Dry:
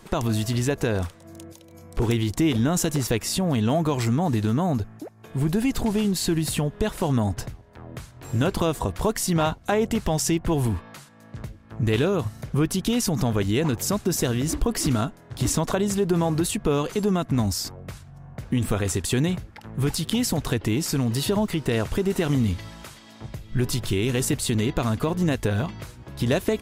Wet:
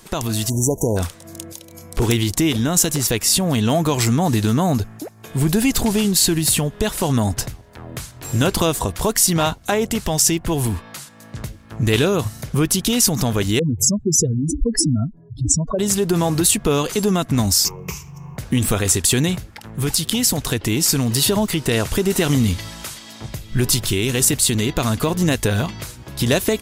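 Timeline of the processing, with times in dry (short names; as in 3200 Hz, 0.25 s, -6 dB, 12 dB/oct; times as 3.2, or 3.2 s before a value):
0.49–0.97 spectral delete 1000–5600 Hz
13.59–15.79 spectral contrast raised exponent 3.2
17.65–18.37 ripple EQ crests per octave 0.77, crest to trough 16 dB
whole clip: high shelf 3300 Hz +11 dB; AGC gain up to 5.5 dB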